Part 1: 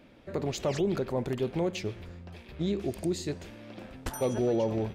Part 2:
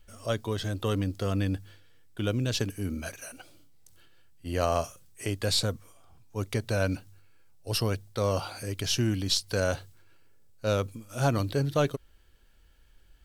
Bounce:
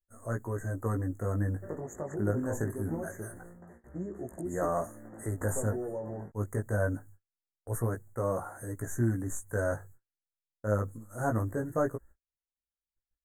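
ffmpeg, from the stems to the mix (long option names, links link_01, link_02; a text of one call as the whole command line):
ffmpeg -i stem1.wav -i stem2.wav -filter_complex "[0:a]lowshelf=frequency=84:gain=-7,acompressor=threshold=-30dB:ratio=6,adelay=1350,volume=-0.5dB[link_01];[1:a]agate=range=-19dB:threshold=-52dB:ratio=16:detection=peak,volume=0dB[link_02];[link_01][link_02]amix=inputs=2:normalize=0,agate=range=-22dB:threshold=-49dB:ratio=16:detection=peak,flanger=delay=16.5:depth=3:speed=0.24,asuperstop=centerf=3600:order=20:qfactor=0.77" out.wav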